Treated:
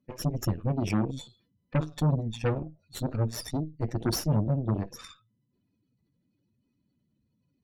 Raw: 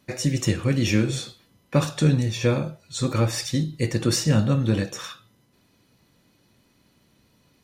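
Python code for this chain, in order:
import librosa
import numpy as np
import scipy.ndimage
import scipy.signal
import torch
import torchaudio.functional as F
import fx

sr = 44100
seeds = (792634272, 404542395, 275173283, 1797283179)

y = fx.spec_expand(x, sr, power=2.1)
y = fx.cheby_harmonics(y, sr, harmonics=(7, 8), levels_db=(-23, -15), full_scale_db=-9.5)
y = F.gain(torch.from_numpy(y), -6.5).numpy()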